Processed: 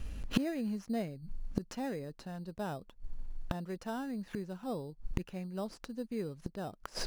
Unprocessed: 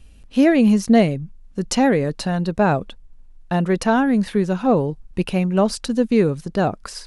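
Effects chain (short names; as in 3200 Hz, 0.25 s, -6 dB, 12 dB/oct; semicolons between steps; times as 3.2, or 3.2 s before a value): bell 9000 Hz -7 dB 0.3 oct; in parallel at -4 dB: sample-and-hold 10×; on the sum: flipped gate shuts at -17 dBFS, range -27 dB; gain +1.5 dB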